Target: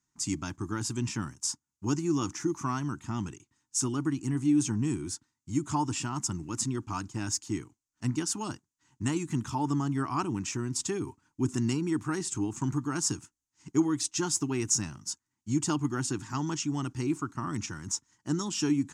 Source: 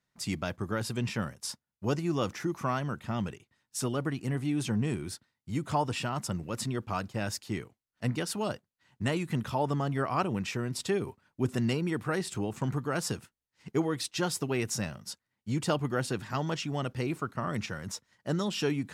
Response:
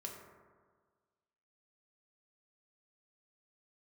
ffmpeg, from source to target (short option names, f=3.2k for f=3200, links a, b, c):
-af "firequalizer=gain_entry='entry(140,0);entry(200,-4);entry(300,8);entry(520,-20);entry(900,1);entry(1900,-6);entry(2800,-4);entry(4000,-5);entry(6600,12);entry(12000,-8)':delay=0.05:min_phase=1"